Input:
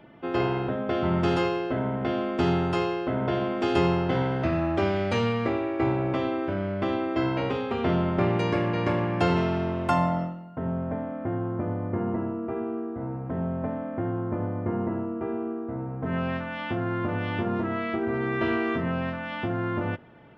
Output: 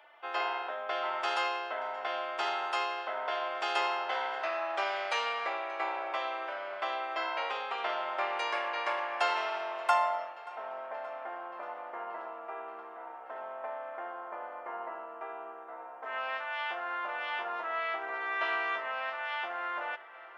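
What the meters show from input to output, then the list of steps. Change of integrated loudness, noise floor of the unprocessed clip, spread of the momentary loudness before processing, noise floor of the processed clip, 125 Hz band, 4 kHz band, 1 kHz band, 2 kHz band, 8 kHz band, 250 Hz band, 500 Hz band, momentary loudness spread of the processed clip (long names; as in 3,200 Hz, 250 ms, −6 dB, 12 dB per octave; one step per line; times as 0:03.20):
−6.5 dB, −35 dBFS, 7 LU, −47 dBFS, below −40 dB, 0.0 dB, −1.0 dB, 0.0 dB, can't be measured, −28.5 dB, −10.0 dB, 11 LU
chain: high-pass filter 710 Hz 24 dB per octave
on a send: tape delay 579 ms, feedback 89%, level −20 dB, low-pass 4,600 Hz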